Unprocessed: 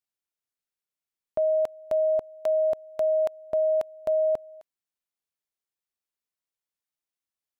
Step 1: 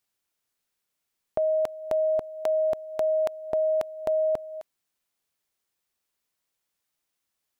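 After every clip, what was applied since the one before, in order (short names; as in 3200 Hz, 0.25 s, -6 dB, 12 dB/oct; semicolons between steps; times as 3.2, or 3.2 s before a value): dynamic EQ 590 Hz, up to -4 dB, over -37 dBFS; in parallel at -0.5 dB: negative-ratio compressor -34 dBFS, ratio -1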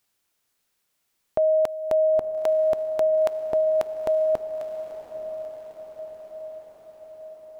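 in parallel at +2 dB: limiter -26.5 dBFS, peak gain reduction 11 dB; on the sum: diffused feedback echo 0.942 s, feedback 61%, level -10.5 dB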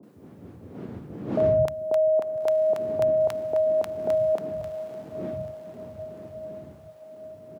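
wind noise 240 Hz -36 dBFS; HPF 88 Hz 24 dB/oct; three bands offset in time mids, highs, lows 30/160 ms, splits 160/830 Hz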